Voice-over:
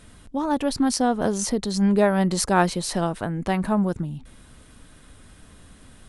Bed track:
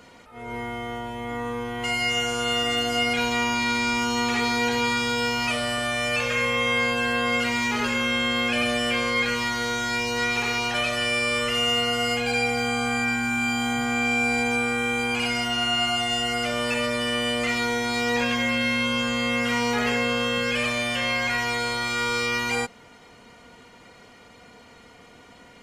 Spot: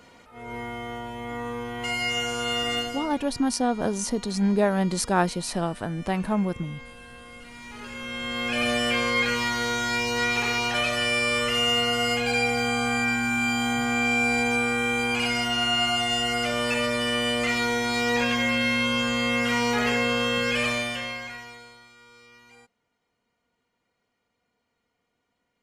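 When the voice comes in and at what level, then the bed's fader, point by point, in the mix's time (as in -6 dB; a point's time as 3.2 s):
2.60 s, -3.0 dB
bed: 2.79 s -2.5 dB
3.22 s -22 dB
7.42 s -22 dB
8.69 s 0 dB
20.73 s 0 dB
21.96 s -27.5 dB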